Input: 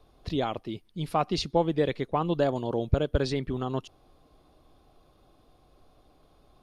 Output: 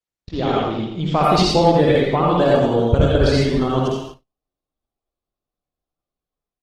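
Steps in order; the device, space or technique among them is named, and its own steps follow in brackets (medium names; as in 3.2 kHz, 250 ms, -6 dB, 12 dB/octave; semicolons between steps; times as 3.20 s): 0.89–1.29 s: dynamic bell 110 Hz, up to -6 dB, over -55 dBFS, Q 5.7; speakerphone in a meeting room (reverberation RT60 0.75 s, pre-delay 54 ms, DRR -4 dB; speakerphone echo 90 ms, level -9 dB; level rider gain up to 12 dB; gate -32 dBFS, range -44 dB; trim -1 dB; Opus 16 kbps 48 kHz)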